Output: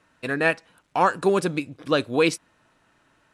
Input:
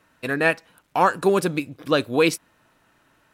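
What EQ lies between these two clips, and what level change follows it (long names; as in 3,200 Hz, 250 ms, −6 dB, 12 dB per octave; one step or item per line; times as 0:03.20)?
low-pass filter 10,000 Hz 24 dB per octave
−1.5 dB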